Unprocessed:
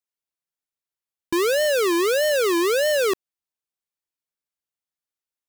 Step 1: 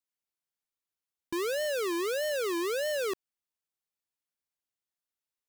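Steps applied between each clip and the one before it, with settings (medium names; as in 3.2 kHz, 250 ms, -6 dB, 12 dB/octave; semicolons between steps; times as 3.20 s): peak limiter -28 dBFS, peak gain reduction 8 dB; trim -2.5 dB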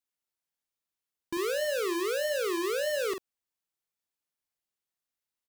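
doubling 45 ms -6.5 dB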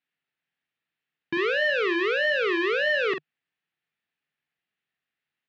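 cabinet simulation 120–3500 Hz, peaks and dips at 150 Hz +7 dB, 360 Hz -3 dB, 560 Hz -6 dB, 1 kHz -7 dB, 1.8 kHz +7 dB, 2.6 kHz +4 dB; trim +7.5 dB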